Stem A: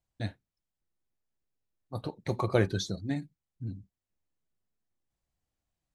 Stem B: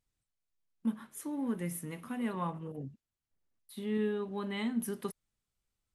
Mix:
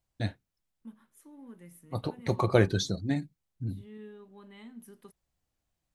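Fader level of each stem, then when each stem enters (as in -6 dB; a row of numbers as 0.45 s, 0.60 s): +3.0 dB, -14.5 dB; 0.00 s, 0.00 s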